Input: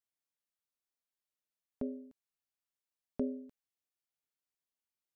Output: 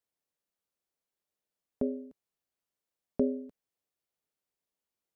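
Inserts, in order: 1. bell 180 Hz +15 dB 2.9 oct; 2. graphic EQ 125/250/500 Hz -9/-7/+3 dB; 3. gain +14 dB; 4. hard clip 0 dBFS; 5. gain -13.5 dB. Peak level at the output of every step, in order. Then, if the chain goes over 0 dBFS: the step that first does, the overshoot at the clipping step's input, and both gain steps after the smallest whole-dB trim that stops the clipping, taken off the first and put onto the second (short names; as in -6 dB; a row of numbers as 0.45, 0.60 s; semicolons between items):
-11.5, -15.5, -1.5, -1.5, -15.0 dBFS; no overload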